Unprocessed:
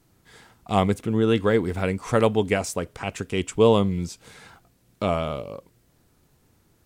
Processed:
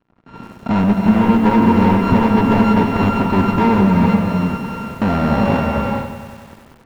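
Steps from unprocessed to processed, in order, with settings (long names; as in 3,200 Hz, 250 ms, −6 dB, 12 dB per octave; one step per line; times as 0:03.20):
samples sorted by size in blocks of 32 samples
hollow resonant body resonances 230/930 Hz, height 14 dB, ringing for 25 ms
downward compressor 8 to 1, threshold −23 dBFS, peak gain reduction 18.5 dB
dynamic equaliser 120 Hz, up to −4 dB, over −43 dBFS, Q 1
leveller curve on the samples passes 5
head-to-tape spacing loss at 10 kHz 33 dB
automatic gain control gain up to 14 dB
reverb whose tail is shaped and stops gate 480 ms rising, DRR 1 dB
feedback echo at a low word length 94 ms, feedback 80%, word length 5 bits, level −12 dB
level −9 dB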